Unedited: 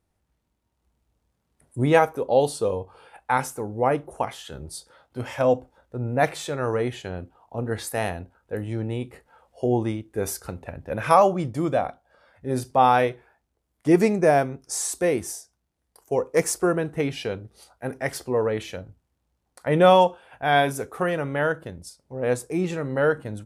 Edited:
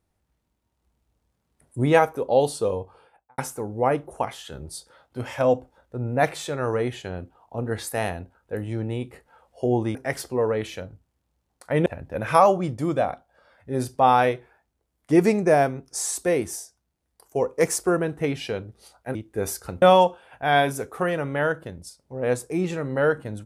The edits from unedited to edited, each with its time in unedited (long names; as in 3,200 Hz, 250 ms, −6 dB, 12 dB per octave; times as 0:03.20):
0:02.78–0:03.38: fade out and dull
0:09.95–0:10.62: swap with 0:17.91–0:19.82